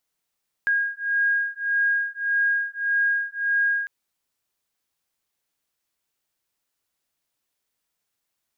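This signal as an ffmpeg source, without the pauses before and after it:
ffmpeg -f lavfi -i "aevalsrc='0.0668*(sin(2*PI*1630*t)+sin(2*PI*1631.7*t))':duration=3.2:sample_rate=44100" out.wav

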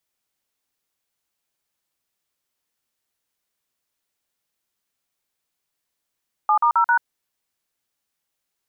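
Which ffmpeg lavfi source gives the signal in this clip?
ffmpeg -f lavfi -i "aevalsrc='0.15*clip(min(mod(t,0.133),0.087-mod(t,0.133))/0.002,0,1)*(eq(floor(t/0.133),0)*(sin(2*PI*852*mod(t,0.133))+sin(2*PI*1209*mod(t,0.133)))+eq(floor(t/0.133),1)*(sin(2*PI*941*mod(t,0.133))+sin(2*PI*1209*mod(t,0.133)))+eq(floor(t/0.133),2)*(sin(2*PI*941*mod(t,0.133))+sin(2*PI*1336*mod(t,0.133)))+eq(floor(t/0.133),3)*(sin(2*PI*941*mod(t,0.133))+sin(2*PI*1477*mod(t,0.133))))':duration=0.532:sample_rate=44100" out.wav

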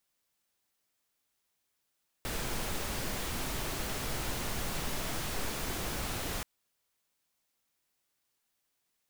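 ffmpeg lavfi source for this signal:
ffmpeg -f lavfi -i "anoisesrc=color=pink:amplitude=0.0912:duration=4.18:sample_rate=44100:seed=1" out.wav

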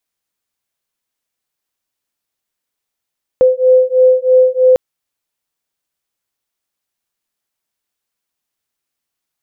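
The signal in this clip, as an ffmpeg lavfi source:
ffmpeg -f lavfi -i "aevalsrc='0.316*(sin(2*PI*510*t)+sin(2*PI*513.1*t))':duration=1.35:sample_rate=44100" out.wav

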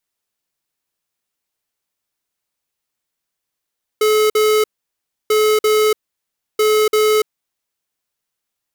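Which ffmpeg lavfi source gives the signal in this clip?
ffmpeg -f lavfi -i "aevalsrc='0.211*(2*lt(mod(429*t,1),0.5)-1)*clip(min(mod(mod(t,1.29),0.34),0.29-mod(mod(t,1.29),0.34))/0.005,0,1)*lt(mod(t,1.29),0.68)':duration=3.87:sample_rate=44100" out.wav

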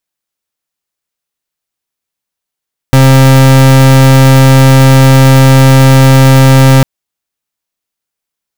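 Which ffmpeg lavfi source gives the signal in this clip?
ffmpeg -f lavfi -i "aevalsrc='0.708*(2*lt(mod(133*t,1),0.37)-1)':duration=3.9:sample_rate=44100" out.wav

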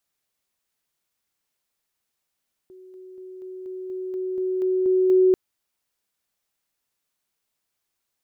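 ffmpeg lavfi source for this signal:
ffmpeg -f lavfi -i "aevalsrc='pow(10,(-43+3*floor(t/0.24))/20)*sin(2*PI*372*t)':duration=2.64:sample_rate=44100" out.wav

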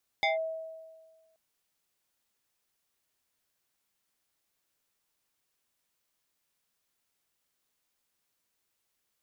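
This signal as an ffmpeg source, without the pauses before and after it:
ffmpeg -f lavfi -i "aevalsrc='0.075*pow(10,-3*t/1.52)*sin(2*PI*645*t+2.1*clip(1-t/0.15,0,1)*sin(2*PI*2.24*645*t))':duration=1.13:sample_rate=44100" out.wav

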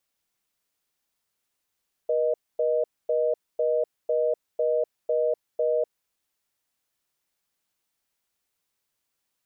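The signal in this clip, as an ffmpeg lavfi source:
ffmpeg -f lavfi -i "aevalsrc='0.0668*(sin(2*PI*480*t)+sin(2*PI*620*t))*clip(min(mod(t,0.5),0.25-mod(t,0.5))/0.005,0,1)':duration=3.94:sample_rate=44100" out.wav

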